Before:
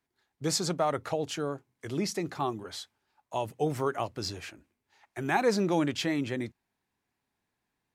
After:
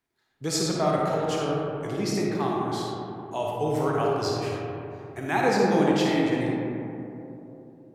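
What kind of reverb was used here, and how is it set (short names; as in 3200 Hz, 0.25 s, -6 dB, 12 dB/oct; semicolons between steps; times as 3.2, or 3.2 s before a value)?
digital reverb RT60 3.2 s, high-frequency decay 0.3×, pre-delay 10 ms, DRR -3.5 dB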